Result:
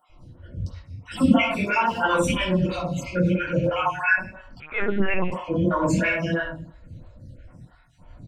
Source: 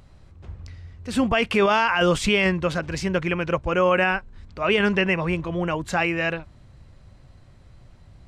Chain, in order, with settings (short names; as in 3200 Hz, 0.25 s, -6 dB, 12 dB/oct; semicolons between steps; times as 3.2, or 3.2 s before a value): random spectral dropouts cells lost 64%; wow and flutter 20 cents; speakerphone echo 0.1 s, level -7 dB; 2.54–3.5 compressor 2:1, threshold -31 dBFS, peak gain reduction 7.5 dB; limiter -18.5 dBFS, peak gain reduction 8 dB; notch comb 400 Hz; shoebox room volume 840 m³, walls furnished, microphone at 7.7 m; 4.6–5.32 LPC vocoder at 8 kHz pitch kept; photocell phaser 3 Hz